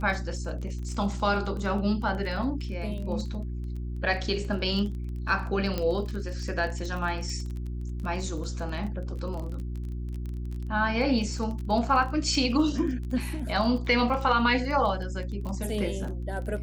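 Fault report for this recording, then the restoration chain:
crackle 20/s -34 dBFS
hum 60 Hz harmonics 6 -33 dBFS
5.78 pop -15 dBFS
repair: de-click; de-hum 60 Hz, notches 6

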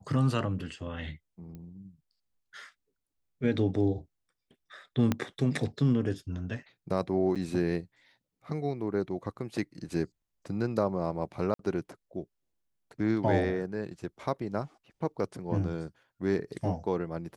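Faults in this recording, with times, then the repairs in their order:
1.55 pop -33 dBFS
5.12 pop -13 dBFS
7.35–7.36 gap 7.3 ms
11.54–11.59 gap 53 ms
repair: de-click; interpolate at 7.35, 7.3 ms; interpolate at 11.54, 53 ms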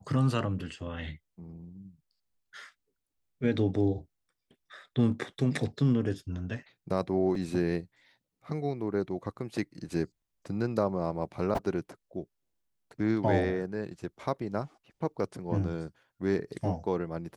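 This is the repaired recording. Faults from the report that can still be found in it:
1.55 pop
5.12 pop

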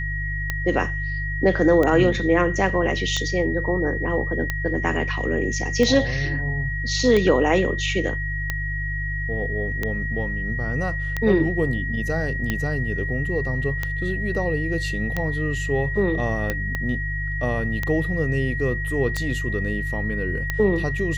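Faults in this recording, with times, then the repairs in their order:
hum 50 Hz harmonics 3 -28 dBFS
tick 45 rpm -10 dBFS
tone 1900 Hz -28 dBFS
16.75 pop -13 dBFS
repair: de-click; de-hum 50 Hz, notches 3; notch 1900 Hz, Q 30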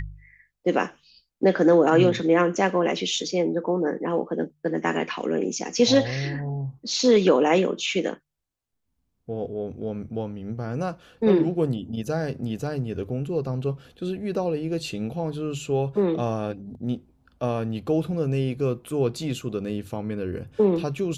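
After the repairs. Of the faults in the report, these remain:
16.75 pop

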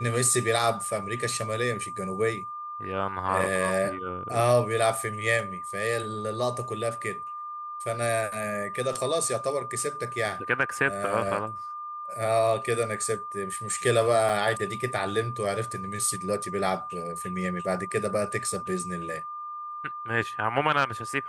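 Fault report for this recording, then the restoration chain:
tone 1200 Hz -34 dBFS
14.29 gap 3.3 ms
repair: notch 1200 Hz, Q 30; interpolate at 14.29, 3.3 ms

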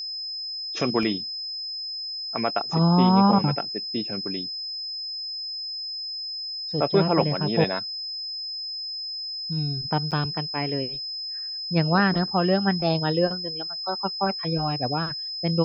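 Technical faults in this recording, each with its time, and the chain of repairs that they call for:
tone 5100 Hz -30 dBFS
1.03 gap 2.3 ms
10.11–10.12 gap 7.6 ms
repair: notch 5100 Hz, Q 30; interpolate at 1.03, 2.3 ms; interpolate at 10.11, 7.6 ms

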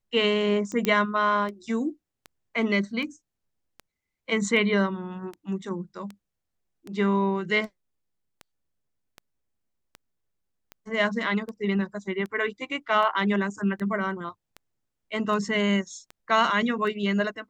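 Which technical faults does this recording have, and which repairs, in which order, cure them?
tick 78 rpm -24 dBFS
0.85 pop -10 dBFS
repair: de-click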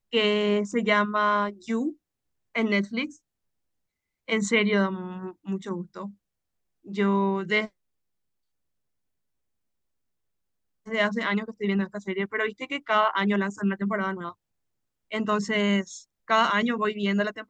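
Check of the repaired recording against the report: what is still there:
none

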